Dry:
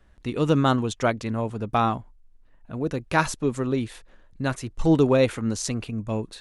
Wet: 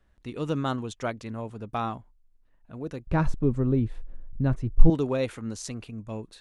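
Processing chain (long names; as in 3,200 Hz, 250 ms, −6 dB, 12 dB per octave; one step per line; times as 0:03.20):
0:03.07–0:04.90: spectral tilt −4.5 dB per octave
level −8 dB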